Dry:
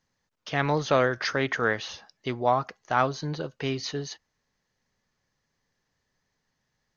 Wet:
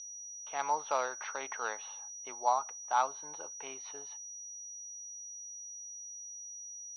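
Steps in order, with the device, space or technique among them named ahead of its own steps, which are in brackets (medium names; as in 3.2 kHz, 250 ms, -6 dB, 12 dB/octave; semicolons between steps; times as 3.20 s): toy sound module (decimation joined by straight lines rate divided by 4×; class-D stage that switches slowly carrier 5.8 kHz; cabinet simulation 790–4900 Hz, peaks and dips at 880 Hz +10 dB, 1.8 kHz -10 dB, 3.8 kHz +4 dB); trim -6.5 dB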